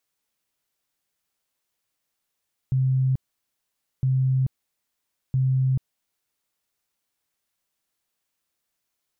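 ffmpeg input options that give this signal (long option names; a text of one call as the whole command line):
ffmpeg -f lavfi -i "aevalsrc='0.126*sin(2*PI*131*mod(t,1.31))*lt(mod(t,1.31),57/131)':duration=3.93:sample_rate=44100" out.wav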